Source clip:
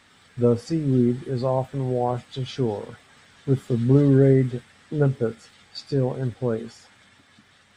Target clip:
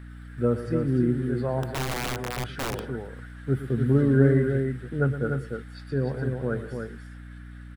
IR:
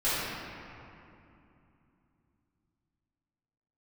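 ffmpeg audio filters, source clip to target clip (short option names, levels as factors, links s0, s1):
-filter_complex "[0:a]firequalizer=gain_entry='entry(130,0);entry(1000,-4);entry(1500,11);entry(2200,-1);entry(3500,-5);entry(6900,-10);entry(10000,6)':delay=0.05:min_phase=1,acrossover=split=620|4200[s0][s1][s2];[s2]alimiter=level_in=13.3:limit=0.0631:level=0:latency=1:release=202,volume=0.075[s3];[s0][s1][s3]amix=inputs=3:normalize=0,aecho=1:1:116|194|296:0.251|0.112|0.531,asettb=1/sr,asplit=3[s4][s5][s6];[s4]atrim=end=1.634[s7];[s5]atrim=start=1.63:end=2.84,asetpts=PTS-STARTPTS,afade=t=in:d=0.004:c=qsin,afade=t=out:st=1.206:d=0.004:c=qsin,aeval=exprs='(mod(10*val(0)+1,2)-1)/10':c=same[s8];[s6]atrim=start=2.836[s9];[s7][s8]acrossfade=d=0.004:c1=hsin:c2=qsin[s10];[s10][s9]acrossfade=d=0.004:c1=qsin:c2=hsin,aeval=exprs='val(0)+0.0141*(sin(2*PI*60*n/s)+sin(2*PI*2*60*n/s)/2+sin(2*PI*3*60*n/s)/3+sin(2*PI*4*60*n/s)/4+sin(2*PI*5*60*n/s)/5)':c=same,volume=0.668"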